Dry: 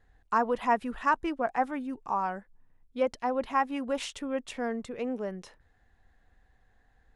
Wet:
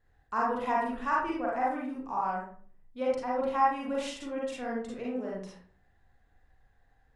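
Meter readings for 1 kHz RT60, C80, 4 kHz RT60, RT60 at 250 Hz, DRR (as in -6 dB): 0.45 s, 6.0 dB, 0.30 s, 0.60 s, -4.5 dB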